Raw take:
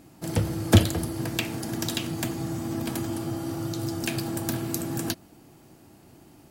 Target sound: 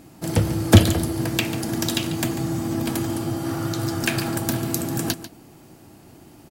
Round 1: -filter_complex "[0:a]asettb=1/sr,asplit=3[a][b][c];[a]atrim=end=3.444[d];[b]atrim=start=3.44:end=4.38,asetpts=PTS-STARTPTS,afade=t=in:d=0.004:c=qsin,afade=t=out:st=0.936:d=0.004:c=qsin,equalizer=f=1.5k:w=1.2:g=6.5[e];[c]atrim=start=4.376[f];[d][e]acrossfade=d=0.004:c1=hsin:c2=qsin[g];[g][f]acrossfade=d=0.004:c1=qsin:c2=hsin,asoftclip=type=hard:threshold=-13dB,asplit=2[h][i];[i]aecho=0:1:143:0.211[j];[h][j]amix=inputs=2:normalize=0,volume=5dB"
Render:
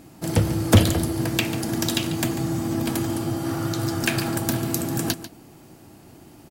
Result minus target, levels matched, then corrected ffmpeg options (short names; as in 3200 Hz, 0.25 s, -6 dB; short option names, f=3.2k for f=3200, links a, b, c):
hard clip: distortion +18 dB
-filter_complex "[0:a]asettb=1/sr,asplit=3[a][b][c];[a]atrim=end=3.444[d];[b]atrim=start=3.44:end=4.38,asetpts=PTS-STARTPTS,afade=t=in:d=0.004:c=qsin,afade=t=out:st=0.936:d=0.004:c=qsin,equalizer=f=1.5k:w=1.2:g=6.5[e];[c]atrim=start=4.376[f];[d][e]acrossfade=d=0.004:c1=hsin:c2=qsin[g];[g][f]acrossfade=d=0.004:c1=qsin:c2=hsin,asoftclip=type=hard:threshold=-6.5dB,asplit=2[h][i];[i]aecho=0:1:143:0.211[j];[h][j]amix=inputs=2:normalize=0,volume=5dB"